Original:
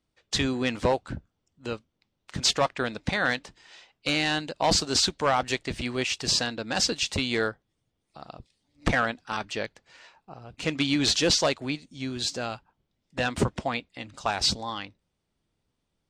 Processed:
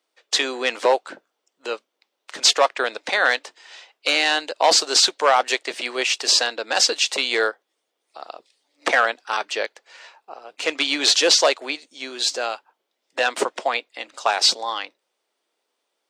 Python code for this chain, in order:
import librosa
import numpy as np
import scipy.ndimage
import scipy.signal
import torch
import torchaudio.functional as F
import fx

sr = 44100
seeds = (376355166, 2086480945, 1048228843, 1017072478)

y = scipy.signal.sosfilt(scipy.signal.butter(4, 410.0, 'highpass', fs=sr, output='sos'), x)
y = y * 10.0 ** (7.5 / 20.0)